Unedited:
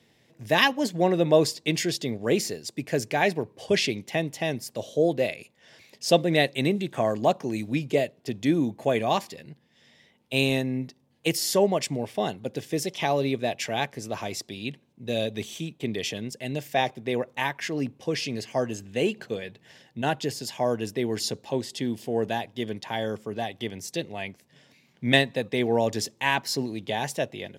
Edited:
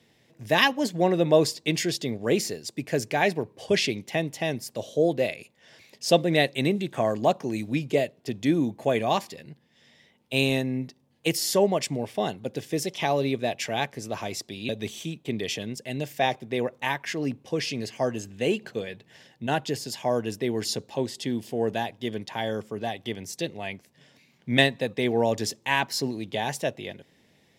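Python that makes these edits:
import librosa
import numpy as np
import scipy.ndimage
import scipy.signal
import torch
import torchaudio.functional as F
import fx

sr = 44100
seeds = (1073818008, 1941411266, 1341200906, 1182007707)

y = fx.edit(x, sr, fx.cut(start_s=14.69, length_s=0.55), tone=tone)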